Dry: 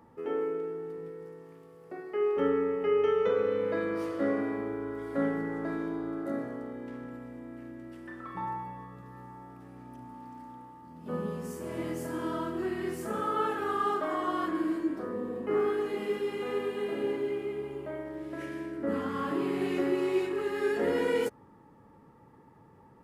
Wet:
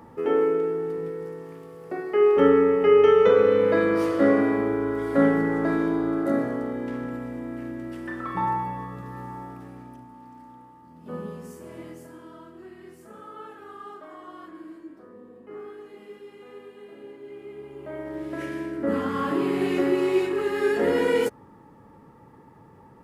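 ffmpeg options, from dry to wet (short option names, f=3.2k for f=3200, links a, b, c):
-af "volume=28dB,afade=t=out:st=9.39:d=0.68:silence=0.298538,afade=t=out:st=11.18:d=1.07:silence=0.266073,afade=t=in:st=17.19:d=0.57:silence=0.334965,afade=t=in:st=17.76:d=0.4:silence=0.375837"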